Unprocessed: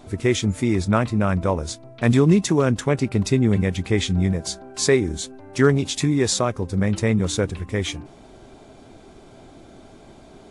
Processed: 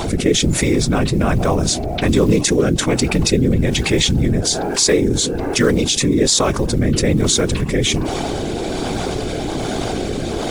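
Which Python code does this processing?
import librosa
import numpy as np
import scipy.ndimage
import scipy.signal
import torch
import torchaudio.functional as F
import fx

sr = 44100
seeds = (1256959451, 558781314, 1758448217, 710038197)

p1 = fx.peak_eq(x, sr, hz=4900.0, db=4.5, octaves=2.7)
p2 = p1 + 0.33 * np.pad(p1, (int(2.7 * sr / 1000.0), 0))[:len(p1)]
p3 = fx.dynamic_eq(p2, sr, hz=1700.0, q=0.7, threshold_db=-30.0, ratio=4.0, max_db=-3)
p4 = fx.level_steps(p3, sr, step_db=16)
p5 = p3 + (p4 * librosa.db_to_amplitude(-2.0))
p6 = fx.quant_float(p5, sr, bits=4)
p7 = fx.rotary(p6, sr, hz=1.2)
p8 = fx.whisperise(p7, sr, seeds[0])
p9 = fx.env_flatten(p8, sr, amount_pct=70)
y = p9 * librosa.db_to_amplitude(-3.0)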